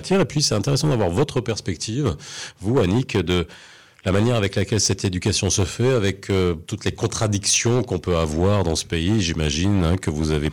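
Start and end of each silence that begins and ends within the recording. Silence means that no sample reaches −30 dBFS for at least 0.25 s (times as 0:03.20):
0:03.54–0:03.99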